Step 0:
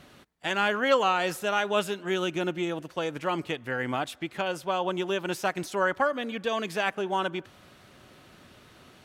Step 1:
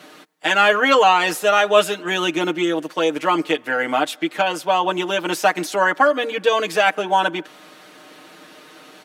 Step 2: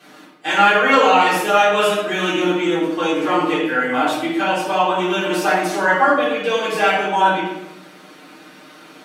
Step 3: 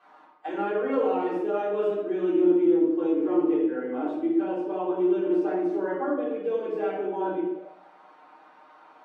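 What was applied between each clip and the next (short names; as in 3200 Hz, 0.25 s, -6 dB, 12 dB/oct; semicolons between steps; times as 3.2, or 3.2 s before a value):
HPF 230 Hz 24 dB/oct; comb 6.5 ms, depth 82%; gain +8.5 dB
shoebox room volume 330 m³, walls mixed, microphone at 3.7 m; gain -9 dB
auto-wah 360–1000 Hz, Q 3.6, down, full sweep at -18.5 dBFS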